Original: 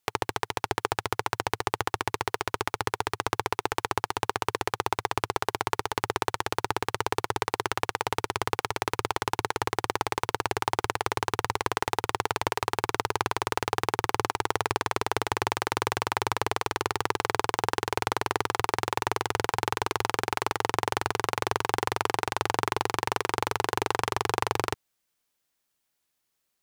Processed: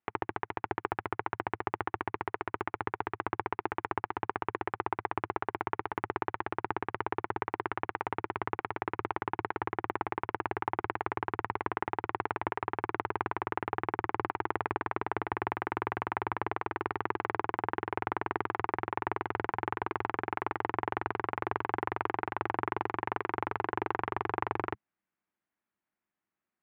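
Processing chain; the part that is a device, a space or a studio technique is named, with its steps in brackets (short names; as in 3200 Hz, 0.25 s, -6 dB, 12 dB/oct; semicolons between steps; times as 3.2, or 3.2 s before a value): bass cabinet (speaker cabinet 74–2200 Hz, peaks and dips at 130 Hz -5 dB, 200 Hz +8 dB, 330 Hz +4 dB, 490 Hz -6 dB); gain -4.5 dB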